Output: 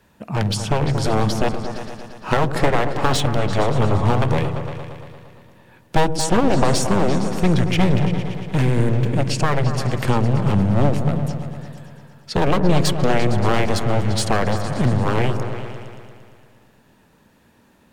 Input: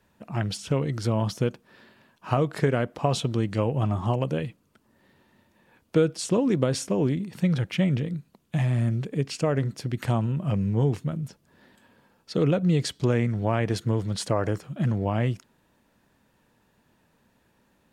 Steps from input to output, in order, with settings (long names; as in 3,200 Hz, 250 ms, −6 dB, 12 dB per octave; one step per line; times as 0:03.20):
wavefolder on the positive side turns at −25 dBFS
echo whose low-pass opens from repeat to repeat 115 ms, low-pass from 400 Hz, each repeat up 2 octaves, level −6 dB
level +8.5 dB